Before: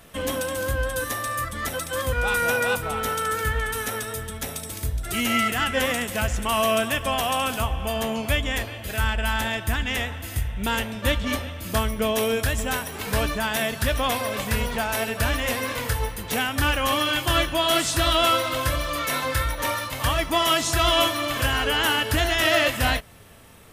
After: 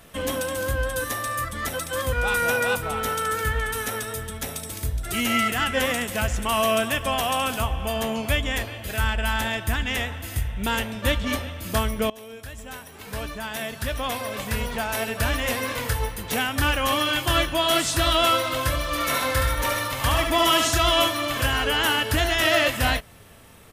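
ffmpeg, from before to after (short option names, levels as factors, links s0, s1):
-filter_complex "[0:a]asplit=3[s0][s1][s2];[s0]afade=t=out:st=18.91:d=0.02[s3];[s1]aecho=1:1:71|128:0.596|0.376,afade=t=in:st=18.91:d=0.02,afade=t=out:st=20.77:d=0.02[s4];[s2]afade=t=in:st=20.77:d=0.02[s5];[s3][s4][s5]amix=inputs=3:normalize=0,asplit=2[s6][s7];[s6]atrim=end=12.1,asetpts=PTS-STARTPTS,afade=t=out:st=12.096:d=0.004:c=hsin:silence=0.0841395[s8];[s7]atrim=start=12.1,asetpts=PTS-STARTPTS,afade=t=in:d=3.34:silence=0.0841395[s9];[s8][s9]concat=n=2:v=0:a=1"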